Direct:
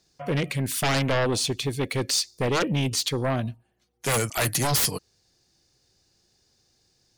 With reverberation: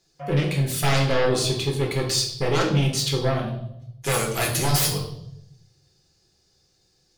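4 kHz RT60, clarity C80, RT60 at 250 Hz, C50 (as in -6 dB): 0.70 s, 9.5 dB, 1.2 s, 6.5 dB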